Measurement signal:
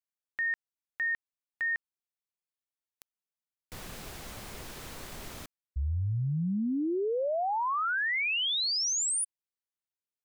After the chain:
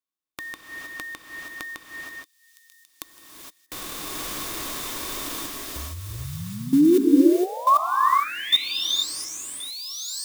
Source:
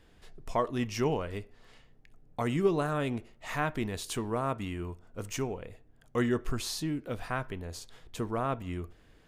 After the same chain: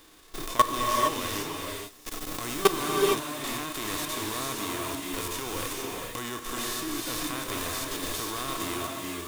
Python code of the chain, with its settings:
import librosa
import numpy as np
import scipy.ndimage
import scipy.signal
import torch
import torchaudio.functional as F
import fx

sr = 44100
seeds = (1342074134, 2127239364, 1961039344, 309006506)

p1 = fx.envelope_flatten(x, sr, power=0.3)
p2 = fx.recorder_agc(p1, sr, target_db=-19.0, rise_db_per_s=16.0, max_gain_db=30)
p3 = fx.dynamic_eq(p2, sr, hz=190.0, q=1.4, threshold_db=-43.0, ratio=4.0, max_db=-6)
p4 = fx.small_body(p3, sr, hz=(310.0, 1100.0, 3600.0), ring_ms=45, db=12)
p5 = p4 + fx.echo_wet_highpass(p4, sr, ms=1091, feedback_pct=33, hz=4800.0, wet_db=-10.5, dry=0)
p6 = fx.level_steps(p5, sr, step_db=20)
p7 = fx.rev_gated(p6, sr, seeds[0], gate_ms=490, shape='rising', drr_db=-0.5)
y = F.gain(torch.from_numpy(p7), 5.0).numpy()